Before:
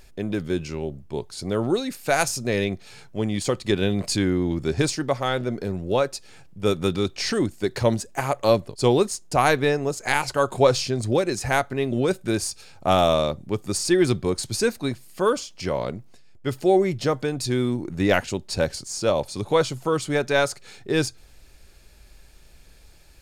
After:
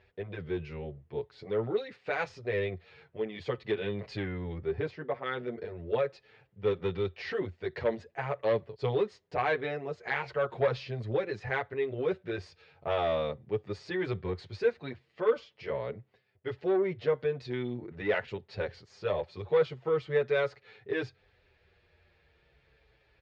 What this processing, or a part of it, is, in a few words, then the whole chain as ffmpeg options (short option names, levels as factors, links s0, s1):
barber-pole flanger into a guitar amplifier: -filter_complex "[0:a]asplit=2[s0][s1];[s1]adelay=7.8,afreqshift=-0.42[s2];[s0][s2]amix=inputs=2:normalize=1,asoftclip=type=tanh:threshold=0.168,highpass=80,equalizer=f=86:t=q:w=4:g=6,equalizer=f=200:t=q:w=4:g=-5,equalizer=f=280:t=q:w=4:g=-9,equalizer=f=450:t=q:w=4:g=8,equalizer=f=1900:t=q:w=4:g=6,lowpass=f=3500:w=0.5412,lowpass=f=3500:w=1.3066,asettb=1/sr,asplit=3[s3][s4][s5];[s3]atrim=end=4.584[s6];[s4]atrim=start=4.58:end=5.26,asetpts=PTS-STARTPTS,afade=t=in:d=0.004:c=qsin,afade=t=out:st=0.676:d=0.004:c=qsin,lowpass=f=1800:p=1[s7];[s5]atrim=start=5.256[s8];[s6][s7]acrossfade=d=0.004:c1=hsin:c2=qsin[s9];[s9][s8]acrossfade=d=0.004:c1=qsin:c2=hsin,volume=0.473"